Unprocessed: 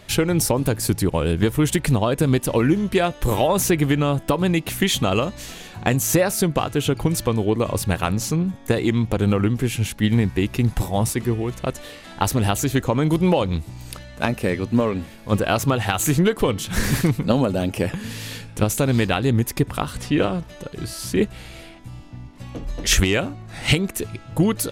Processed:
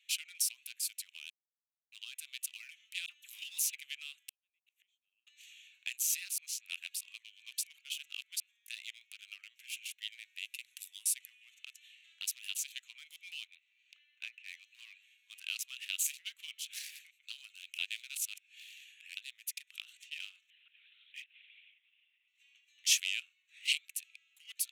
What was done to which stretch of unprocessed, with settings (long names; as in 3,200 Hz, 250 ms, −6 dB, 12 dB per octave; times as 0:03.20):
0:01.30–0:01.92: silence
0:03.06–0:03.74: all-pass dispersion lows, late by 56 ms, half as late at 2,100 Hz
0:04.24–0:05.27: gate with flip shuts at −14 dBFS, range −42 dB
0:06.38–0:08.40: reverse
0:10.36–0:11.55: parametric band 10,000 Hz +6.5 dB
0:13.47–0:14.48: low-pass filter 2,900 Hz
0:16.78–0:17.23: fade out quadratic, to −9 dB
0:17.78–0:19.17: reverse
0:20.50–0:22.28: linear-prediction vocoder at 8 kHz whisper
whole clip: adaptive Wiener filter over 9 samples; elliptic high-pass filter 2,500 Hz, stop band 80 dB; level −7.5 dB